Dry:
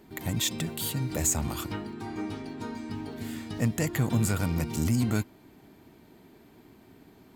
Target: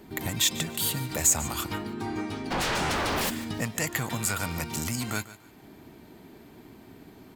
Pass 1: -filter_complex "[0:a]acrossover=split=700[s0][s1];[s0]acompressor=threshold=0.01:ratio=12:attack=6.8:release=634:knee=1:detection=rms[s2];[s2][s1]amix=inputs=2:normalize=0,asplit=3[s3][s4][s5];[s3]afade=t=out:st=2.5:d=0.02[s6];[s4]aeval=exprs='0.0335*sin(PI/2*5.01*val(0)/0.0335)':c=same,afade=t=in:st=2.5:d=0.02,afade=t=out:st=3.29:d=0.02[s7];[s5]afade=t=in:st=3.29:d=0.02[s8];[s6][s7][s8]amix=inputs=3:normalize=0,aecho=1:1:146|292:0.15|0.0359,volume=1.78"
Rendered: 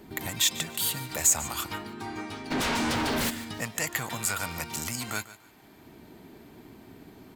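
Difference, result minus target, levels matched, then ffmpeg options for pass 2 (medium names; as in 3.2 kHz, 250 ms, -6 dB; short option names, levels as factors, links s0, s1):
compression: peak gain reduction +6.5 dB
-filter_complex "[0:a]acrossover=split=700[s0][s1];[s0]acompressor=threshold=0.0224:ratio=12:attack=6.8:release=634:knee=1:detection=rms[s2];[s2][s1]amix=inputs=2:normalize=0,asplit=3[s3][s4][s5];[s3]afade=t=out:st=2.5:d=0.02[s6];[s4]aeval=exprs='0.0335*sin(PI/2*5.01*val(0)/0.0335)':c=same,afade=t=in:st=2.5:d=0.02,afade=t=out:st=3.29:d=0.02[s7];[s5]afade=t=in:st=3.29:d=0.02[s8];[s6][s7][s8]amix=inputs=3:normalize=0,aecho=1:1:146|292:0.15|0.0359,volume=1.78"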